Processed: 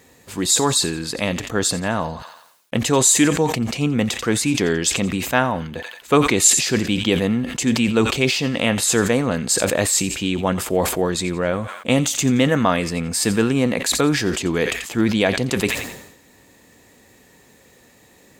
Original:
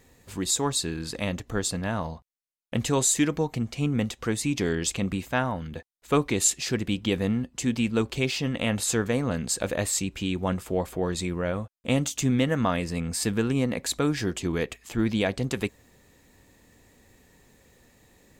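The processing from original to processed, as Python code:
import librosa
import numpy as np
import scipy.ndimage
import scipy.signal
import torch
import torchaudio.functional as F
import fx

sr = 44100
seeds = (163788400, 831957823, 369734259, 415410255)

p1 = fx.highpass(x, sr, hz=180.0, slope=6)
p2 = p1 + fx.echo_wet_highpass(p1, sr, ms=87, feedback_pct=38, hz=1500.0, wet_db=-16.0, dry=0)
p3 = fx.sustainer(p2, sr, db_per_s=66.0)
y = F.gain(torch.from_numpy(p3), 8.0).numpy()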